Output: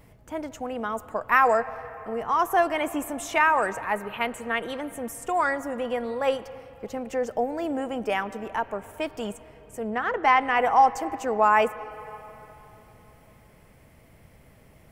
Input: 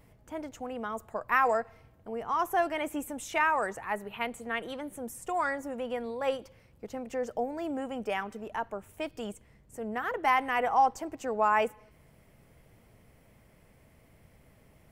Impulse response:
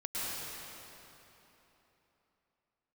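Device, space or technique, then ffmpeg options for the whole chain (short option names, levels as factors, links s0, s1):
filtered reverb send: -filter_complex "[0:a]asettb=1/sr,asplit=3[s0][s1][s2];[s0]atrim=end=9.904[s3];[s1]atrim=start=9.9:end=10.6,asetpts=PTS-STARTPTS,afade=t=in:d=0.004:c=qsin,afade=t=out:st=0.696:d=0.004:c=qsin,lowpass=5700[s4];[s2]atrim=start=10.596[s5];[s3][s4]acrossfade=d=0.004:c1=hsin:c2=qsin[s6];[s6][s5]acrossfade=d=0.004:c1=qsin:c2=hsin,asplit=2[s7][s8];[s8]highpass=f=260:w=0.5412,highpass=f=260:w=1.3066,lowpass=3100[s9];[1:a]atrim=start_sample=2205[s10];[s9][s10]afir=irnorm=-1:irlink=0,volume=0.1[s11];[s7][s11]amix=inputs=2:normalize=0,volume=1.88"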